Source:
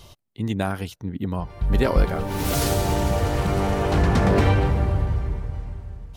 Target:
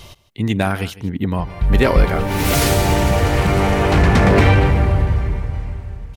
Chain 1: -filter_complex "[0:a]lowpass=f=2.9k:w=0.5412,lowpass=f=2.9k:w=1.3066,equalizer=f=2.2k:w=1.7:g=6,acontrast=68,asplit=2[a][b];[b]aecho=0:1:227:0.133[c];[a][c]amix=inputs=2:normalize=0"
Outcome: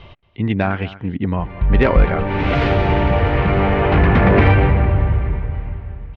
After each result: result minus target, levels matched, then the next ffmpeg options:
echo 73 ms late; 4000 Hz band -6.0 dB
-filter_complex "[0:a]lowpass=f=2.9k:w=0.5412,lowpass=f=2.9k:w=1.3066,equalizer=f=2.2k:w=1.7:g=6,acontrast=68,asplit=2[a][b];[b]aecho=0:1:154:0.133[c];[a][c]amix=inputs=2:normalize=0"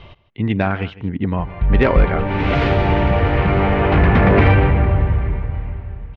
4000 Hz band -6.0 dB
-filter_complex "[0:a]equalizer=f=2.2k:w=1.7:g=6,acontrast=68,asplit=2[a][b];[b]aecho=0:1:154:0.133[c];[a][c]amix=inputs=2:normalize=0"

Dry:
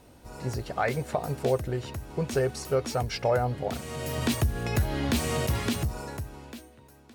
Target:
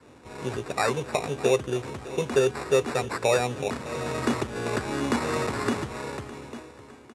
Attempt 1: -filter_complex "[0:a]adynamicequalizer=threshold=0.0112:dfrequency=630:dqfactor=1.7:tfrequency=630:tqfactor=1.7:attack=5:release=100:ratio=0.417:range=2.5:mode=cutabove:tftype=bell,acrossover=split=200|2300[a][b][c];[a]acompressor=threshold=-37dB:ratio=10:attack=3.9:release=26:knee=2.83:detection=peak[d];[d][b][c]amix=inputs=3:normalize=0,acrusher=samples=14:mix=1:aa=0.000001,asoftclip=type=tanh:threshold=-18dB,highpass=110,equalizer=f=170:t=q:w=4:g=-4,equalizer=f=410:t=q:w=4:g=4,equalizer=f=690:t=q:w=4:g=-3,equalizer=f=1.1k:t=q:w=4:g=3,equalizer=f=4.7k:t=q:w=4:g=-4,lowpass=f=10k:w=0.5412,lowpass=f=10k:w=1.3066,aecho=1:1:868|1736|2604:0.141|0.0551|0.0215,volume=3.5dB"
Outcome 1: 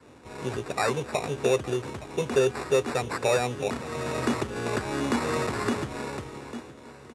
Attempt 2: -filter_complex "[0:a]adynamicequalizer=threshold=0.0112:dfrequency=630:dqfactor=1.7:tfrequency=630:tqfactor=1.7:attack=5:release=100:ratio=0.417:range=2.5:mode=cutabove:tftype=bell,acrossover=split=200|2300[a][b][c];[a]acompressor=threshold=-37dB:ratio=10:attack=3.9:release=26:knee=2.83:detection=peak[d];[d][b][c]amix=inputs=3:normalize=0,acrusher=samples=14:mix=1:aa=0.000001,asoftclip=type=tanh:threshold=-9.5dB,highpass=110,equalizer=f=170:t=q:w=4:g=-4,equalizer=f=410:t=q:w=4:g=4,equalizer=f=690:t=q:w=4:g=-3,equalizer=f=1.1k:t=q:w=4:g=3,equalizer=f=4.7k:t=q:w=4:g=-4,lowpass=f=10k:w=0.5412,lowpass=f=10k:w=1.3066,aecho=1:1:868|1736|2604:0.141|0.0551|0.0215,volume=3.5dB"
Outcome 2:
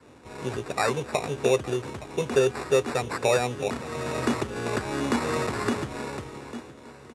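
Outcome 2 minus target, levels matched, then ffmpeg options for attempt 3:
echo 0.259 s late
-filter_complex "[0:a]adynamicequalizer=threshold=0.0112:dfrequency=630:dqfactor=1.7:tfrequency=630:tqfactor=1.7:attack=5:release=100:ratio=0.417:range=2.5:mode=cutabove:tftype=bell,acrossover=split=200|2300[a][b][c];[a]acompressor=threshold=-37dB:ratio=10:attack=3.9:release=26:knee=2.83:detection=peak[d];[d][b][c]amix=inputs=3:normalize=0,acrusher=samples=14:mix=1:aa=0.000001,asoftclip=type=tanh:threshold=-9.5dB,highpass=110,equalizer=f=170:t=q:w=4:g=-4,equalizer=f=410:t=q:w=4:g=4,equalizer=f=690:t=q:w=4:g=-3,equalizer=f=1.1k:t=q:w=4:g=3,equalizer=f=4.7k:t=q:w=4:g=-4,lowpass=f=10k:w=0.5412,lowpass=f=10k:w=1.3066,aecho=1:1:609|1218|1827:0.141|0.0551|0.0215,volume=3.5dB"

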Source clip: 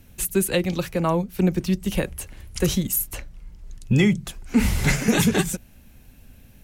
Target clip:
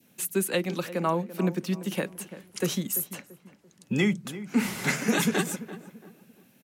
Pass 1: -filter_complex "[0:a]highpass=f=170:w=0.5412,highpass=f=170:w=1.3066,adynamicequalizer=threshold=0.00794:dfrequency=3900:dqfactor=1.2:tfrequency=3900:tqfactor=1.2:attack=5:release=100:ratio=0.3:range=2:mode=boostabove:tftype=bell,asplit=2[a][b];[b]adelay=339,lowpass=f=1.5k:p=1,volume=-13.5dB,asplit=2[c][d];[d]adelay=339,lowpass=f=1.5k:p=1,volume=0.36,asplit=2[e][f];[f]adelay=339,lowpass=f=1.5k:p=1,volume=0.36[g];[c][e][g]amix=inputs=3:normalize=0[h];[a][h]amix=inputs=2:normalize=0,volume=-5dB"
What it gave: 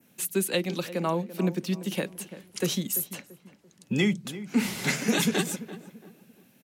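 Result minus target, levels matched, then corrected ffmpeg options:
4000 Hz band +3.0 dB
-filter_complex "[0:a]highpass=f=170:w=0.5412,highpass=f=170:w=1.3066,adynamicequalizer=threshold=0.00794:dfrequency=1300:dqfactor=1.2:tfrequency=1300:tqfactor=1.2:attack=5:release=100:ratio=0.3:range=2:mode=boostabove:tftype=bell,asplit=2[a][b];[b]adelay=339,lowpass=f=1.5k:p=1,volume=-13.5dB,asplit=2[c][d];[d]adelay=339,lowpass=f=1.5k:p=1,volume=0.36,asplit=2[e][f];[f]adelay=339,lowpass=f=1.5k:p=1,volume=0.36[g];[c][e][g]amix=inputs=3:normalize=0[h];[a][h]amix=inputs=2:normalize=0,volume=-5dB"

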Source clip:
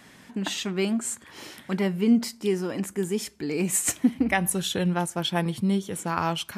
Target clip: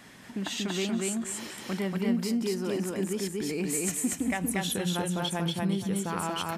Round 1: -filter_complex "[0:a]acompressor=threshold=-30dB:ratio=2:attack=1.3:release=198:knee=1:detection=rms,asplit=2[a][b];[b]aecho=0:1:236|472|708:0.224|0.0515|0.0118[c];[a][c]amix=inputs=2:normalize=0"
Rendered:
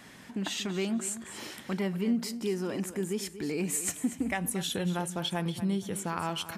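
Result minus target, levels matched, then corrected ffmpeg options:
echo-to-direct -11.5 dB
-filter_complex "[0:a]acompressor=threshold=-30dB:ratio=2:attack=1.3:release=198:knee=1:detection=rms,asplit=2[a][b];[b]aecho=0:1:236|472|708|944:0.841|0.194|0.0445|0.0102[c];[a][c]amix=inputs=2:normalize=0"

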